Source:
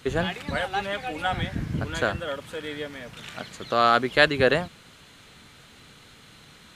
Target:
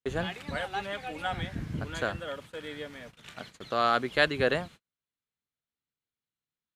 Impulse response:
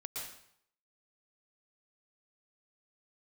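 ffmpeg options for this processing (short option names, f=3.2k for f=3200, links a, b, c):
-af "agate=range=-41dB:threshold=-40dB:ratio=16:detection=peak,volume=-6dB"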